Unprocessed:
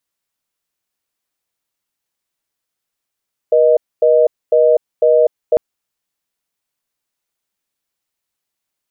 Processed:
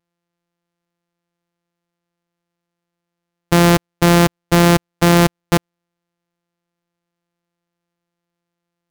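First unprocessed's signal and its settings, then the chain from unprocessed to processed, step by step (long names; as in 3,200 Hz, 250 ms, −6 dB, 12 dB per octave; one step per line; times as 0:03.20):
call progress tone reorder tone, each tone −10.5 dBFS 2.05 s
samples sorted by size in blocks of 256 samples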